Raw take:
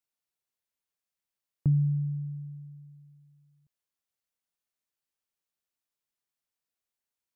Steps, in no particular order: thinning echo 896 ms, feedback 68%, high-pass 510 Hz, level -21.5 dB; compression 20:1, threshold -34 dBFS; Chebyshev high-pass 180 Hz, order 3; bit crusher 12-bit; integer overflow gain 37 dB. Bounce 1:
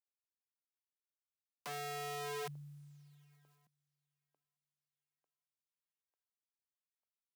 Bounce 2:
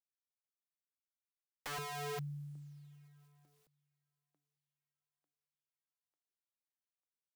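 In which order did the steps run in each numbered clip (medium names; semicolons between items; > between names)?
compression > bit crusher > thinning echo > integer overflow > Chebyshev high-pass; Chebyshev high-pass > bit crusher > thinning echo > integer overflow > compression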